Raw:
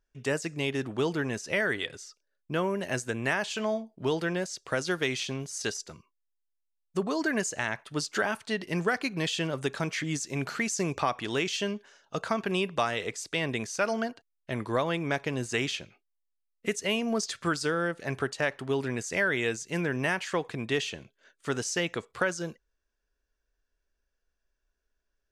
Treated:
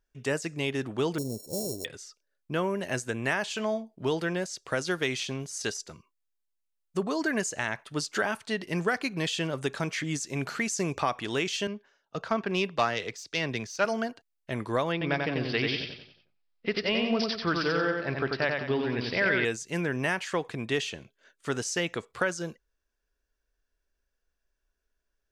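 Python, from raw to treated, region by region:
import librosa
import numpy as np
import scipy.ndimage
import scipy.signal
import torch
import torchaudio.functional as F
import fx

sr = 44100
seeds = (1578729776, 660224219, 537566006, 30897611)

y = fx.chain(x, sr, fx.sample_sort(block=32),
    fx.ellip_bandstop(low_hz=580.0, high_hz=5600.0, order=3, stop_db=70), at=(1.18, 1.85))
y = fx.chain(y, sr, fx.self_delay(depth_ms=0.06),
    fx.high_shelf_res(hz=6900.0, db=-8.0, q=1.5),
    fx.band_widen(depth_pct=70), at=(11.67, 13.85))
y = fx.chain(y, sr, fx.echo_feedback(ms=91, feedback_pct=43, wet_db=-3.5),
    fx.resample_bad(factor=4, down='none', up='filtered'), at=(14.92, 19.45))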